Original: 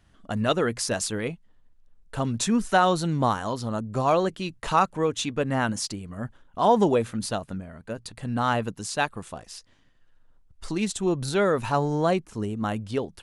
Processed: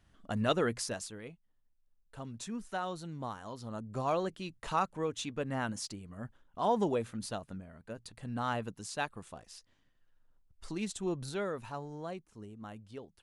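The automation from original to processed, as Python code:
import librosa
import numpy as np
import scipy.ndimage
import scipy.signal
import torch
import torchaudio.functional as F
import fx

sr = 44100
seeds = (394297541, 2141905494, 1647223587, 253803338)

y = fx.gain(x, sr, db=fx.line((0.73, -6.0), (1.15, -17.0), (3.33, -17.0), (3.91, -10.0), (11.14, -10.0), (11.85, -18.5)))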